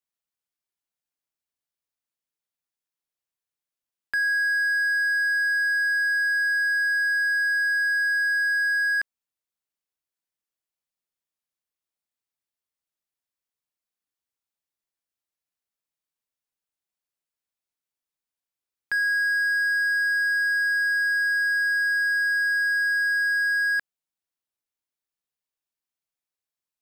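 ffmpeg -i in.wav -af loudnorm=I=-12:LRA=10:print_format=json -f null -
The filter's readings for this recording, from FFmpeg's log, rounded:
"input_i" : "-21.6",
"input_tp" : "-18.3",
"input_lra" : "5.8",
"input_thresh" : "-31.7",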